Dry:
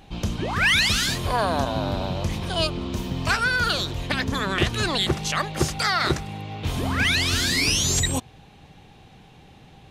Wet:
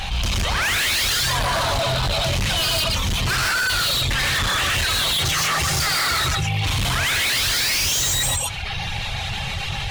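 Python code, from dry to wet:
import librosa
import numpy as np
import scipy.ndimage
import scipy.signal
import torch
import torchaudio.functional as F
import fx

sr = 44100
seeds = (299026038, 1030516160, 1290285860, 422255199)

p1 = fx.high_shelf(x, sr, hz=7700.0, db=-11.0)
p2 = p1 + 10.0 ** (-7.0 / 20.0) * np.pad(p1, (int(122 * sr / 1000.0), 0))[:len(p1)]
p3 = fx.rev_gated(p2, sr, seeds[0], gate_ms=190, shape='rising', drr_db=-6.0)
p4 = fx.dereverb_blind(p3, sr, rt60_s=0.63)
p5 = fx.rider(p4, sr, range_db=4, speed_s=0.5)
p6 = p4 + (p5 * librosa.db_to_amplitude(2.0))
p7 = fx.tone_stack(p6, sr, knobs='10-0-10')
p8 = np.clip(10.0 ** (25.5 / 20.0) * p7, -1.0, 1.0) / 10.0 ** (25.5 / 20.0)
p9 = fx.env_flatten(p8, sr, amount_pct=70)
y = p9 * librosa.db_to_amplitude(5.5)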